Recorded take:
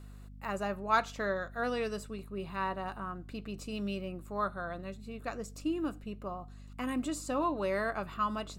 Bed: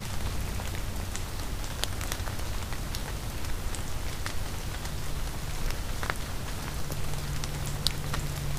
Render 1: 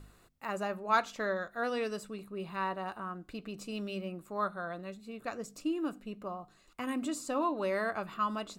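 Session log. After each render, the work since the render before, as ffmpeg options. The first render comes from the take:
-af "bandreject=f=50:t=h:w=4,bandreject=f=100:t=h:w=4,bandreject=f=150:t=h:w=4,bandreject=f=200:t=h:w=4,bandreject=f=250:t=h:w=4"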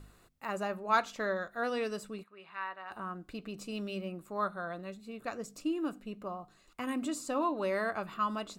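-filter_complex "[0:a]asplit=3[s0][s1][s2];[s0]afade=t=out:st=2.22:d=0.02[s3];[s1]bandpass=f=1800:t=q:w=1.3,afade=t=in:st=2.22:d=0.02,afade=t=out:st=2.9:d=0.02[s4];[s2]afade=t=in:st=2.9:d=0.02[s5];[s3][s4][s5]amix=inputs=3:normalize=0"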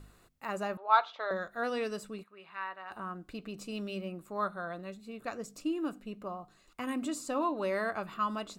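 -filter_complex "[0:a]asettb=1/sr,asplit=3[s0][s1][s2];[s0]atrim=end=0.774[s3];[s1]atrim=start=0.77:end=1.31,asetpts=PTS-STARTPTS,afade=t=in:d=0.004:c=qsin,afade=t=out:st=0.536:d=0.004:c=qsin,highpass=f=470:w=0.5412,highpass=f=470:w=1.3066,equalizer=f=480:t=q:w=4:g=-4,equalizer=f=860:t=q:w=4:g=6,equalizer=f=1300:t=q:w=4:g=4,equalizer=f=1800:t=q:w=4:g=-6,equalizer=f=2600:t=q:w=4:g=-5,equalizer=f=3700:t=q:w=4:g=6,lowpass=f=3800:w=0.5412,lowpass=f=3800:w=1.3066[s4];[s2]atrim=start=1.306[s5];[s3][s4]acrossfade=d=0.004:c1=hsin:c2=qsin[s6];[s6][s5]acrossfade=d=0.004:c1=qsin:c2=hsin"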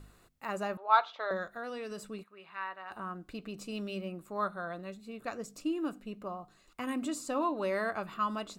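-filter_complex "[0:a]asettb=1/sr,asplit=3[s0][s1][s2];[s0]atrim=end=1.534[s3];[s1]atrim=start=1.53:end=2.05,asetpts=PTS-STARTPTS,afade=t=in:d=0.004:c=qsin,afade=t=out:st=0.516:d=0.004:c=qsin,acompressor=threshold=0.0158:ratio=6:attack=3.2:release=140:knee=1:detection=peak[s4];[s2]atrim=start=2.046[s5];[s3][s4]acrossfade=d=0.004:c1=hsin:c2=qsin[s6];[s6][s5]acrossfade=d=0.004:c1=qsin:c2=hsin"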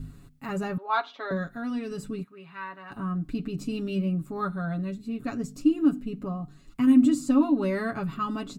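-af "lowshelf=f=350:t=q:w=1.5:g=14,aecho=1:1:7.2:0.79"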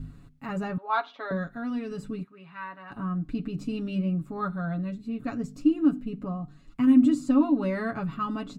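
-af "lowpass=f=3300:p=1,bandreject=f=390:w=12"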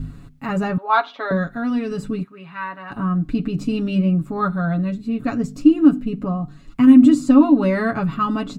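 -af "volume=2.99,alimiter=limit=0.794:level=0:latency=1"

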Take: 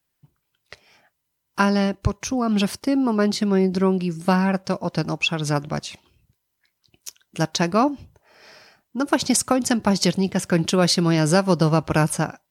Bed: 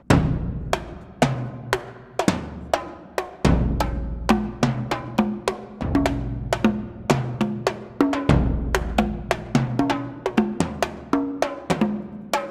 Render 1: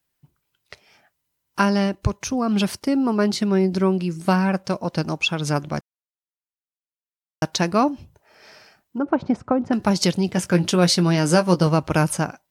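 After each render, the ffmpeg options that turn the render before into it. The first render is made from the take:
-filter_complex "[0:a]asettb=1/sr,asplit=3[s0][s1][s2];[s0]atrim=end=8.984[s3];[s1]atrim=start=8.98:end=9.73,asetpts=PTS-STARTPTS,afade=t=in:d=0.004:c=qsin,afade=t=out:st=0.746:d=0.004:c=qsin,lowpass=1100[s4];[s2]atrim=start=9.726[s5];[s3][s4]acrossfade=d=0.004:c1=hsin:c2=qsin[s6];[s6][s5]acrossfade=d=0.004:c1=qsin:c2=hsin,asettb=1/sr,asplit=3[s7][s8][s9];[s7]atrim=end=10.324[s10];[s8]atrim=start=10.32:end=11.67,asetpts=PTS-STARTPTS,afade=t=in:d=0.004:c=qsin,afade=t=out:st=1.346:d=0.004:c=qsin,asplit=2[s11][s12];[s12]adelay=17,volume=0.355[s13];[s11][s13]amix=inputs=2:normalize=0,atrim=end_sample=59535[s14];[s9]atrim=start=11.666[s15];[s10][s14]acrossfade=d=0.004:c1=hsin:c2=qsin[s16];[s16][s15]acrossfade=d=0.004:c1=qsin:c2=hsin,asplit=3[s17][s18][s19];[s17]atrim=end=5.81,asetpts=PTS-STARTPTS,afade=t=out:st=5.806:d=0.004:c=hsin[s20];[s18]atrim=start=5.81:end=7.42,asetpts=PTS-STARTPTS,volume=0[s21];[s19]atrim=start=7.42,asetpts=PTS-STARTPTS,afade=t=in:d=0.004:c=hsin[s22];[s20][s21][s22]concat=n=3:v=0:a=1"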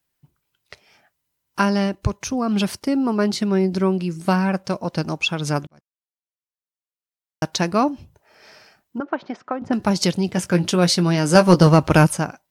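-filter_complex "[0:a]asettb=1/sr,asplit=3[s0][s1][s2];[s0]atrim=end=9.004[s3];[s1]atrim=start=9:end=9.62,asetpts=PTS-STARTPTS,afade=t=in:d=0.004:c=qsin,afade=t=out:st=0.616:d=0.004:c=qsin,highpass=440,equalizer=f=510:t=q:w=4:g=-5,equalizer=f=860:t=q:w=4:g=-4,equalizer=f=1800:t=q:w=4:g=5,equalizer=f=3200:t=q:w=4:g=4,lowpass=f=6300:w=0.5412,lowpass=f=6300:w=1.3066[s4];[s2]atrim=start=9.616[s5];[s3][s4]acrossfade=d=0.004:c1=hsin:c2=qsin[s6];[s6][s5]acrossfade=d=0.004:c1=qsin:c2=hsin,asettb=1/sr,asplit=3[s7][s8][s9];[s7]atrim=end=11.354[s10];[s8]atrim=start=11.35:end=12.07,asetpts=PTS-STARTPTS,afade=t=in:d=0.004:c=qsin,afade=t=out:st=0.716:d=0.004:c=qsin,acontrast=71[s11];[s9]atrim=start=12.066[s12];[s10][s11]acrossfade=d=0.004:c1=hsin:c2=qsin[s13];[s13][s12]acrossfade=d=0.004:c1=qsin:c2=hsin,asplit=2[s14][s15];[s14]atrim=end=5.67,asetpts=PTS-STARTPTS,afade=t=out:st=5.666:d=0.004:c=hsin[s16];[s15]atrim=start=5.67,asetpts=PTS-STARTPTS,afade=t=in:d=1.86[s17];[s16][s17]concat=n=2:v=0:a=1"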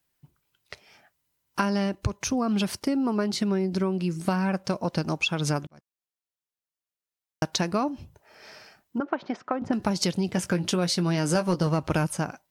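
-af "acompressor=threshold=0.0794:ratio=6"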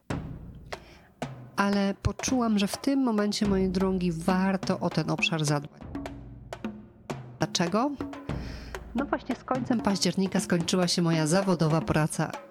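-filter_complex "[1:a]volume=0.15[s0];[0:a][s0]amix=inputs=2:normalize=0"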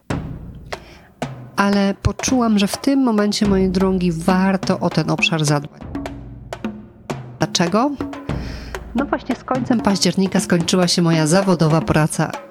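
-af "volume=2.99,alimiter=limit=0.794:level=0:latency=1"

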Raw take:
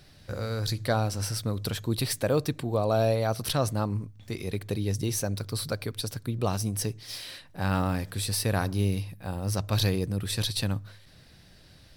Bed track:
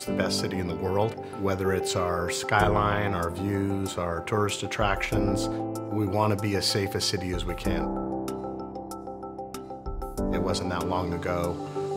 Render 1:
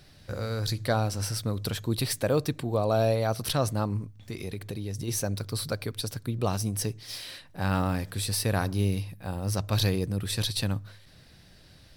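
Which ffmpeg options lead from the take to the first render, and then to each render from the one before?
-filter_complex "[0:a]asplit=3[s0][s1][s2];[s0]afade=t=out:st=4.17:d=0.02[s3];[s1]acompressor=threshold=0.0316:ratio=6:attack=3.2:release=140:knee=1:detection=peak,afade=t=in:st=4.17:d=0.02,afade=t=out:st=5.07:d=0.02[s4];[s2]afade=t=in:st=5.07:d=0.02[s5];[s3][s4][s5]amix=inputs=3:normalize=0"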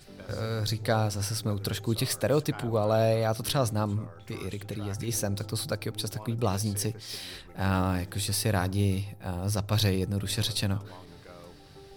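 -filter_complex "[1:a]volume=0.0944[s0];[0:a][s0]amix=inputs=2:normalize=0"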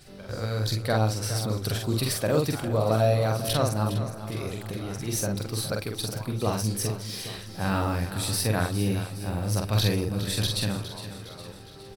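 -filter_complex "[0:a]asplit=2[s0][s1];[s1]adelay=46,volume=0.708[s2];[s0][s2]amix=inputs=2:normalize=0,aecho=1:1:411|822|1233|1644|2055|2466:0.251|0.133|0.0706|0.0374|0.0198|0.0105"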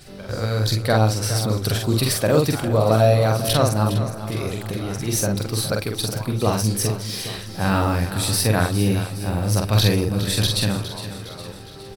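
-af "volume=2.11"

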